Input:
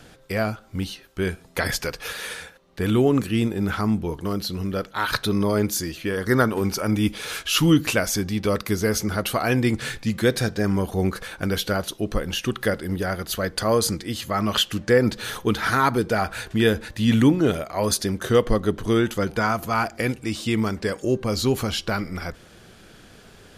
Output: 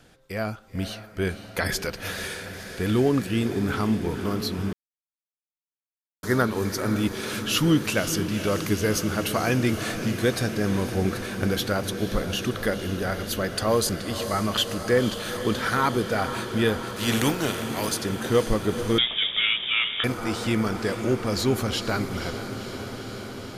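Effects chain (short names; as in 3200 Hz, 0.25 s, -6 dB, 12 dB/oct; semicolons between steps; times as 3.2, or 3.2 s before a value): 16.86–17.91 spectral contrast lowered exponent 0.55; AGC gain up to 6 dB; diffused feedback echo 0.5 s, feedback 79%, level -10.5 dB; 4.73–6.23 mute; 18.98–20.04 inverted band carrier 3600 Hz; gain -7.5 dB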